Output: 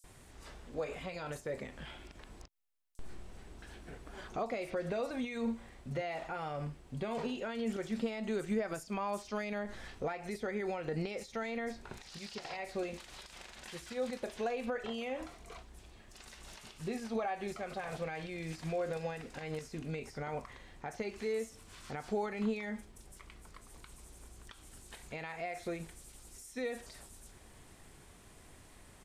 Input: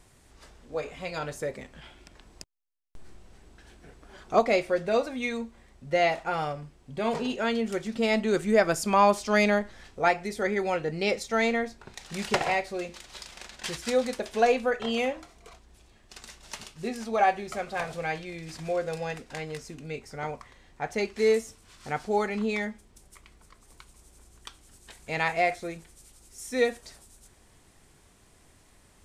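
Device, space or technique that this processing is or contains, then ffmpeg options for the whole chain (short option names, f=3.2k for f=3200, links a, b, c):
de-esser from a sidechain: -filter_complex "[0:a]asettb=1/sr,asplit=3[a][b][c];[a]atrim=end=12.034[d];[b]atrim=start=12.03:end=12.53,asetpts=PTS-STARTPTS,afade=t=in:d=0.004:c=qsin,afade=t=out:st=0.496:d=0.004:c=qsin,equalizer=f=4.8k:w=1.3:g=13.5[e];[c]atrim=start=12.526[f];[d][e]acrossfade=d=0.004:c1=hsin:c2=qsin[g];[g][f]acrossfade=d=0.004:c1=qsin:c2=hsin,asplit=2[h][i];[i]highpass=f=4.2k:p=1,apad=whole_len=1281007[j];[h][j]sidechaincompress=threshold=-50dB:ratio=4:attack=0.61:release=81,asplit=3[k][l][m];[k]afade=t=out:st=5.42:d=0.02[n];[l]asplit=2[o][p];[p]adelay=44,volume=-5dB[q];[o][q]amix=inputs=2:normalize=0,afade=t=in:st=5.42:d=0.02,afade=t=out:st=5.96:d=0.02[r];[m]afade=t=in:st=5.96:d=0.02[s];[n][r][s]amix=inputs=3:normalize=0,acrossover=split=5700[t][u];[t]adelay=40[v];[v][u]amix=inputs=2:normalize=0,volume=2dB"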